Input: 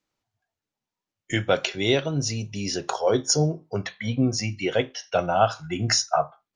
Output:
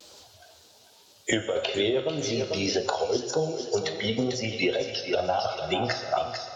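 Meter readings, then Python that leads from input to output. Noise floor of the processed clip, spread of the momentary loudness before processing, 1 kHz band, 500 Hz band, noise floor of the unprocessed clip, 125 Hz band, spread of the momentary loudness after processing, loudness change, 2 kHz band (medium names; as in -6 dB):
-56 dBFS, 8 LU, -4.0 dB, -1.0 dB, under -85 dBFS, -9.0 dB, 3 LU, -3.0 dB, -1.5 dB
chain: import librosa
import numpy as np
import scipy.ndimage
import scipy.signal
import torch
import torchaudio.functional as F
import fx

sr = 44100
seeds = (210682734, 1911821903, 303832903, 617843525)

y = fx.spec_quant(x, sr, step_db=15)
y = scipy.signal.sosfilt(scipy.signal.butter(2, 71.0, 'highpass', fs=sr, output='sos'), y)
y = fx.env_lowpass_down(y, sr, base_hz=1600.0, full_db=-19.5)
y = fx.graphic_eq(y, sr, hz=(125, 250, 500, 1000, 2000, 4000), db=(-12, -9, 5, -4, -9, 9))
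y = fx.over_compress(y, sr, threshold_db=-23.0, ratio=-0.5)
y = fx.wow_flutter(y, sr, seeds[0], rate_hz=2.1, depth_cents=87.0)
y = fx.echo_thinned(y, sr, ms=445, feedback_pct=33, hz=230.0, wet_db=-10.5)
y = fx.rev_fdn(y, sr, rt60_s=1.2, lf_ratio=0.8, hf_ratio=0.95, size_ms=73.0, drr_db=7.0)
y = fx.band_squash(y, sr, depth_pct=100)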